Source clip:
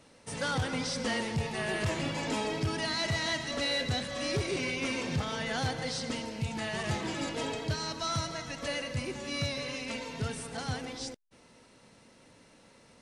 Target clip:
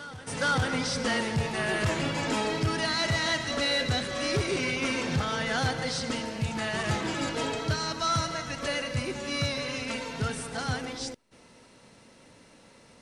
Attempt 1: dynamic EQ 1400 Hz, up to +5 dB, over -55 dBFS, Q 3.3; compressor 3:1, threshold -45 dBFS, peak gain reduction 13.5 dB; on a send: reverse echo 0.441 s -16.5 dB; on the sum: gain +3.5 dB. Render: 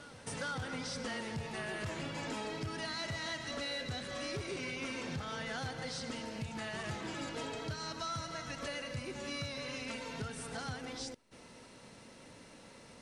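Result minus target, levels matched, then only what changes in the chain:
compressor: peak gain reduction +13.5 dB
remove: compressor 3:1, threshold -45 dBFS, peak gain reduction 13.5 dB

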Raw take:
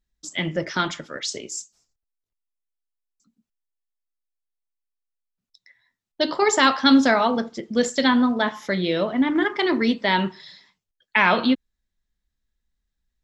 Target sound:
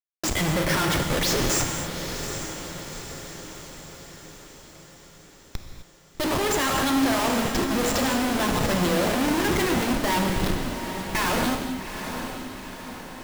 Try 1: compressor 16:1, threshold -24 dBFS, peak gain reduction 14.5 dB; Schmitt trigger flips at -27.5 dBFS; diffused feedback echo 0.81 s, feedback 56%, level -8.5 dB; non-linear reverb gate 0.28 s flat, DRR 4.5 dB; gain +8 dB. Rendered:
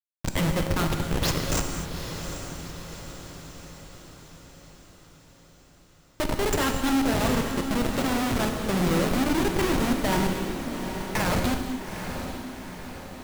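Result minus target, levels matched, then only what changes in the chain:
Schmitt trigger: distortion +4 dB
change: Schmitt trigger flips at -37.5 dBFS

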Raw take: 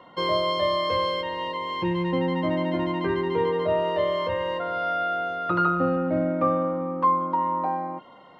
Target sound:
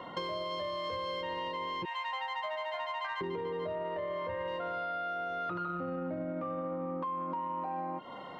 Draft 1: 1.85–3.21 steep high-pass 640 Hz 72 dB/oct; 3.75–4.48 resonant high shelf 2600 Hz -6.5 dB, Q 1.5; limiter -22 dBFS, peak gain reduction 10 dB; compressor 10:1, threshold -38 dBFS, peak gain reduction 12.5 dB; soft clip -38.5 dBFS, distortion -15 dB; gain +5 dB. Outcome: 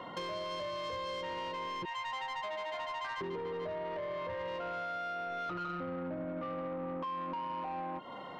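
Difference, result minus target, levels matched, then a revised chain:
soft clip: distortion +13 dB
1.85–3.21 steep high-pass 640 Hz 72 dB/oct; 3.75–4.48 resonant high shelf 2600 Hz -6.5 dB, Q 1.5; limiter -22 dBFS, peak gain reduction 10 dB; compressor 10:1, threshold -38 dBFS, peak gain reduction 12.5 dB; soft clip -30 dBFS, distortion -28 dB; gain +5 dB

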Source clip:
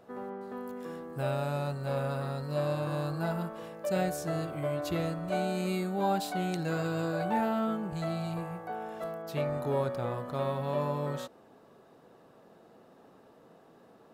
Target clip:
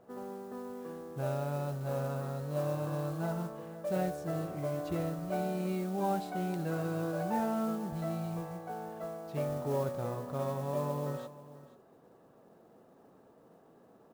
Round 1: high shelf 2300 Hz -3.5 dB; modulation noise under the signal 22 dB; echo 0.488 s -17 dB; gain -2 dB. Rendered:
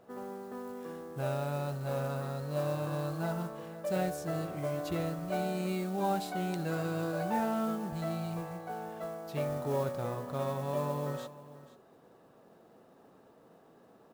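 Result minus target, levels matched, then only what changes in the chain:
4000 Hz band +4.5 dB
change: high shelf 2300 Hz -14 dB

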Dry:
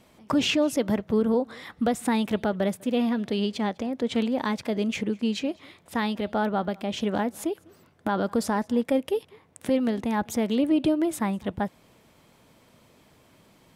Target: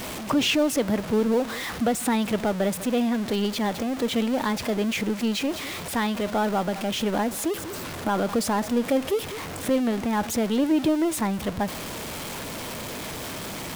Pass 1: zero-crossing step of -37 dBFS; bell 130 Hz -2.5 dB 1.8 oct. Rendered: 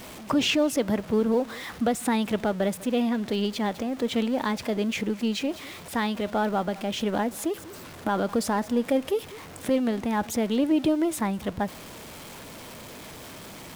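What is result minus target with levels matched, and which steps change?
zero-crossing step: distortion -8 dB
change: zero-crossing step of -28 dBFS

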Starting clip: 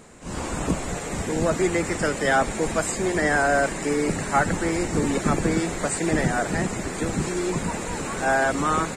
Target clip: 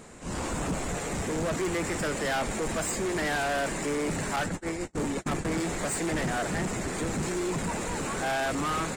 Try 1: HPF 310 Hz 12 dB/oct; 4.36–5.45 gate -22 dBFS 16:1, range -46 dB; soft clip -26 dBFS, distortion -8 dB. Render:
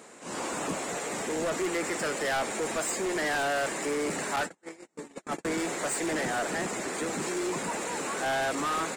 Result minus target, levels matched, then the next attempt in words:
250 Hz band -3.0 dB
4.36–5.45 gate -22 dBFS 16:1, range -46 dB; soft clip -26 dBFS, distortion -7 dB

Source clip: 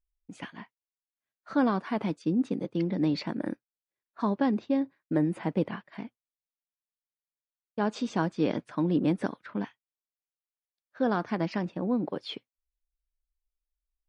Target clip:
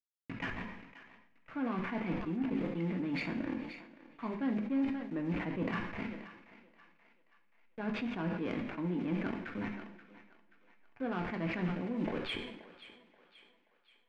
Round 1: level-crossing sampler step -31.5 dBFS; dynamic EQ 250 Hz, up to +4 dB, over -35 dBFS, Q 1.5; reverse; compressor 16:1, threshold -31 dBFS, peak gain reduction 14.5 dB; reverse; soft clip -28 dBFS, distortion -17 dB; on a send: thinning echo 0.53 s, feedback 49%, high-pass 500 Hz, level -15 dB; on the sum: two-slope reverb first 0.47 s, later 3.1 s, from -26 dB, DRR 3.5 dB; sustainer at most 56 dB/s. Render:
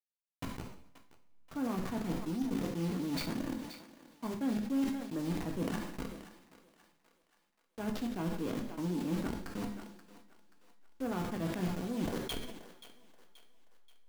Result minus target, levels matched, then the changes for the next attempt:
2000 Hz band -6.0 dB; level-crossing sampler: distortion +8 dB
change: level-crossing sampler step -39.5 dBFS; add after dynamic EQ: synth low-pass 2300 Hz, resonance Q 3.2

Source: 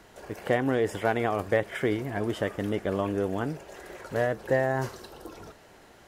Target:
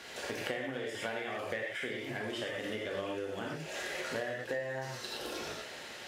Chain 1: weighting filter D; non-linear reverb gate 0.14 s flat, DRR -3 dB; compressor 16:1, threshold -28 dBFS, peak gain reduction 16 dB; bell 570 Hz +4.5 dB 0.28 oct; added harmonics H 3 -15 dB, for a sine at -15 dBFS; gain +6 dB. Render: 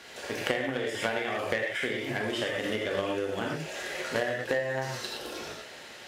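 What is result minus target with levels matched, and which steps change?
compressor: peak gain reduction -6 dB
change: compressor 16:1, threshold -34.5 dBFS, peak gain reduction 22 dB

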